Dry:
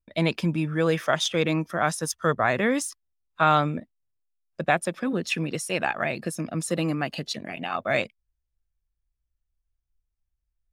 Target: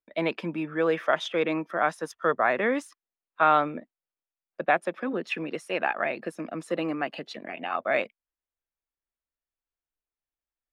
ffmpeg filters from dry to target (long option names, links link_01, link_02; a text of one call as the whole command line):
ffmpeg -i in.wav -filter_complex "[0:a]acrossover=split=240 3000:gain=0.0631 1 0.126[link_01][link_02][link_03];[link_01][link_02][link_03]amix=inputs=3:normalize=0" out.wav